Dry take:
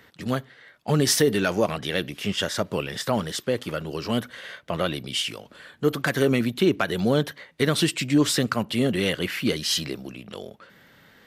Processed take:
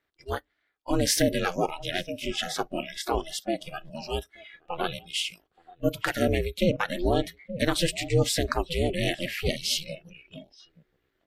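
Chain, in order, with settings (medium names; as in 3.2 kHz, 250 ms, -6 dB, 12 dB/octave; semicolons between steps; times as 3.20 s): ring modulator 170 Hz; echo from a far wall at 150 m, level -11 dB; spectral noise reduction 22 dB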